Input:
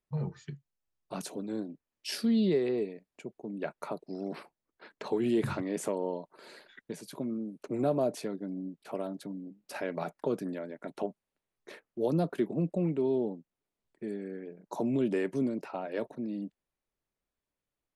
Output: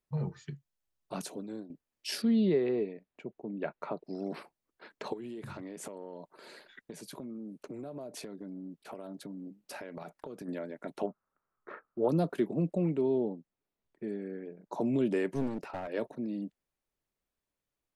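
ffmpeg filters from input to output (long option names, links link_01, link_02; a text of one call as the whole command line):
ffmpeg -i in.wav -filter_complex "[0:a]asettb=1/sr,asplit=3[link_01][link_02][link_03];[link_01]atrim=end=2.224[link_04];[link_02]atrim=start=2.22:end=4.05,asetpts=PTS-STARTPTS,afade=type=in:duration=0.004:curve=qsin,afade=type=out:start_time=1.826:duration=0.004:curve=qsin,lowpass=3100[link_05];[link_03]atrim=start=4.046[link_06];[link_04][link_05]acrossfade=duration=0.004:curve1=hsin:curve2=qsin[link_07];[link_07][link_06]acrossfade=duration=0.004:curve1=qsin:curve2=hsin,asplit=3[link_08][link_09][link_10];[link_08]afade=type=out:start_time=5.12:duration=0.02[link_11];[link_09]acompressor=threshold=-38dB:ratio=16:attack=3.2:release=140:knee=1:detection=peak,afade=type=in:start_time=5.12:duration=0.02,afade=type=out:start_time=10.47:duration=0.02[link_12];[link_10]afade=type=in:start_time=10.47:duration=0.02[link_13];[link_11][link_12][link_13]amix=inputs=3:normalize=0,asettb=1/sr,asplit=3[link_14][link_15][link_16];[link_14]atrim=end=11.074[link_17];[link_15]atrim=start=11.07:end=12.09,asetpts=PTS-STARTPTS,afade=type=in:duration=0.004:curve=qsin,afade=type=out:start_time=1.016:duration=0.004:curve=qsin,lowpass=frequency=1300:width_type=q:width=6.9[link_18];[link_16]atrim=start=12.086[link_19];[link_17][link_18]acrossfade=duration=0.004:curve1=hsin:curve2=qsin[link_20];[link_20][link_19]acrossfade=duration=0.004:curve1=qsin:curve2=hsin,asettb=1/sr,asplit=3[link_21][link_22][link_23];[link_21]atrim=end=13.014[link_24];[link_22]atrim=start=13.01:end=14.81,asetpts=PTS-STARTPTS,afade=type=in:duration=0.004:curve=qsin,afade=type=out:start_time=1.796:duration=0.004:curve=qsin,lowpass=frequency=3100:poles=1[link_25];[link_23]atrim=start=14.806[link_26];[link_24][link_25]acrossfade=duration=0.004:curve1=hsin:curve2=qsin[link_27];[link_27][link_26]acrossfade=duration=0.004:curve1=qsin:curve2=hsin,asettb=1/sr,asplit=3[link_28][link_29][link_30];[link_28]atrim=end=15.354[link_31];[link_29]atrim=start=15.35:end=15.88,asetpts=PTS-STARTPTS,afade=type=in:duration=0.004:curve=qsin,afade=type=out:start_time=0.526:duration=0.004:curve=qsin,aeval=exprs='clip(val(0),-1,0.0141)':channel_layout=same[link_32];[link_30]atrim=start=15.876[link_33];[link_31][link_32]acrossfade=duration=0.004:curve1=hsin:curve2=qsin[link_34];[link_34][link_33]acrossfade=duration=0.004:curve1=qsin:curve2=hsin,asplit=2[link_35][link_36];[link_35]atrim=end=1.7,asetpts=PTS-STARTPTS,afade=type=out:start_time=1.19:duration=0.51:silence=0.298538[link_37];[link_36]atrim=start=1.7,asetpts=PTS-STARTPTS,afade=type=in:duration=0.004:curve=hsin:silence=0.298538[link_38];[link_37][link_38]concat=n=2:v=0:a=1" out.wav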